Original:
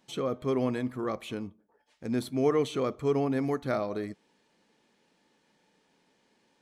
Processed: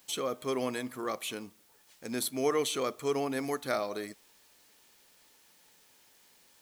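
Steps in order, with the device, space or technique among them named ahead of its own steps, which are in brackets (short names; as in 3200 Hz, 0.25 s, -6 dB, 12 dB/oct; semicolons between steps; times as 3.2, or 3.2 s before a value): turntable without a phono preamp (RIAA curve recording; white noise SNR 29 dB)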